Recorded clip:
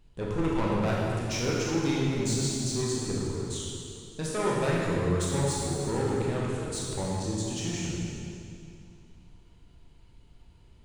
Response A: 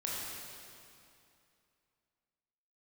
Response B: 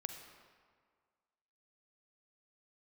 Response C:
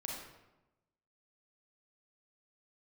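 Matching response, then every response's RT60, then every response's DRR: A; 2.6 s, 1.8 s, 1.0 s; -5.5 dB, 5.5 dB, -2.0 dB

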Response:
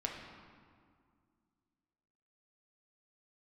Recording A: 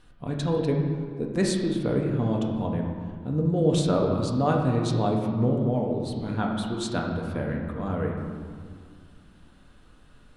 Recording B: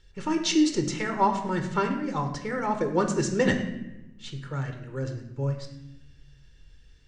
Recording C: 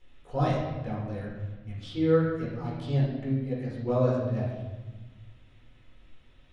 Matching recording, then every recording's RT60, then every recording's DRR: A; 2.1 s, 0.90 s, 1.2 s; -0.5 dB, 5.0 dB, -6.5 dB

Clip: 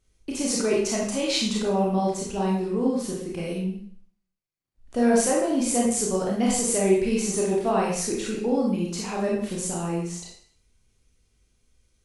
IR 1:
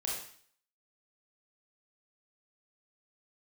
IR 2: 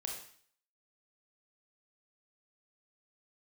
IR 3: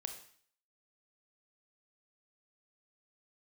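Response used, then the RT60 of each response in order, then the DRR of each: 1; 0.55 s, 0.55 s, 0.55 s; -4.0 dB, 0.0 dB, 5.5 dB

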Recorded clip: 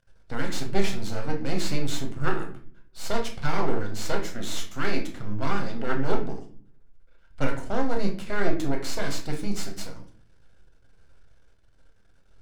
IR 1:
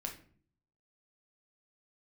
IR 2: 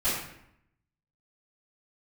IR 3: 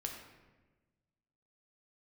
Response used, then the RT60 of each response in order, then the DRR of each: 1; 0.50 s, 0.75 s, 1.2 s; 1.5 dB, -17.0 dB, 1.5 dB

